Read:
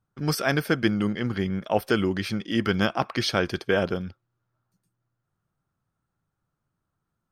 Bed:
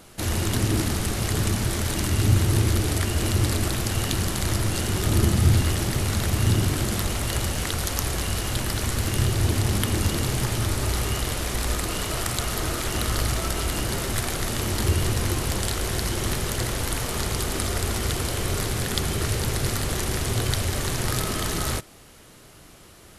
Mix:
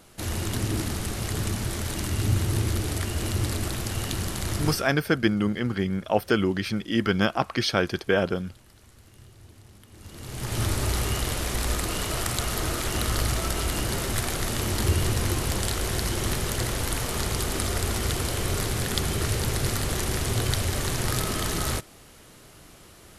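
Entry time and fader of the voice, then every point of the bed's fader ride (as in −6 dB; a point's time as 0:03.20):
4.40 s, +0.5 dB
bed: 0:04.70 −4.5 dB
0:04.97 −28 dB
0:09.88 −28 dB
0:10.60 −1 dB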